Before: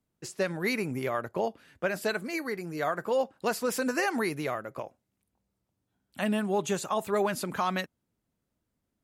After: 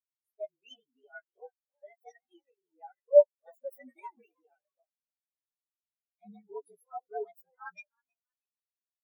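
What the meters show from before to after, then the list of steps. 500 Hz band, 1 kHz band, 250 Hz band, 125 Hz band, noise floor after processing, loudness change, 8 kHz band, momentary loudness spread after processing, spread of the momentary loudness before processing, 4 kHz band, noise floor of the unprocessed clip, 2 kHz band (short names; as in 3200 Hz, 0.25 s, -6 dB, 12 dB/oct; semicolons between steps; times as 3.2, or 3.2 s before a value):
0.0 dB, -14.0 dB, under -25 dB, under -30 dB, under -85 dBFS, +4.0 dB, under -30 dB, 24 LU, 7 LU, under -20 dB, -82 dBFS, under -15 dB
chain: inharmonic rescaling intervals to 113%; RIAA curve recording; on a send: frequency-shifting echo 0.318 s, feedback 58%, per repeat +85 Hz, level -10 dB; on the sum: spectral expander 4:1; gain +4 dB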